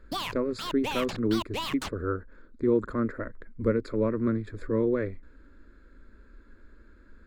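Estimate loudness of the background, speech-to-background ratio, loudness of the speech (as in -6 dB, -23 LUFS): -35.5 LUFS, 6.0 dB, -29.5 LUFS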